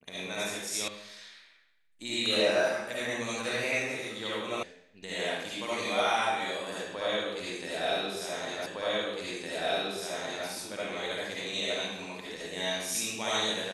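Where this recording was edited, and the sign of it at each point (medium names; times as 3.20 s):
0.88 s: sound stops dead
4.63 s: sound stops dead
8.66 s: repeat of the last 1.81 s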